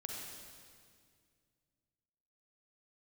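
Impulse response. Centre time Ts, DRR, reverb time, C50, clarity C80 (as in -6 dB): 101 ms, -1.0 dB, 2.1 s, -0.5 dB, 1.5 dB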